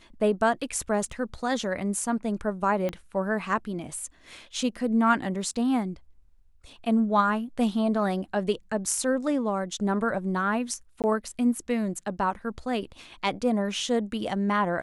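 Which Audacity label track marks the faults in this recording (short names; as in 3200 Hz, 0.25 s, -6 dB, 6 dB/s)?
1.120000	1.120000	gap 3.5 ms
2.890000	2.890000	pop -18 dBFS
11.020000	11.040000	gap 18 ms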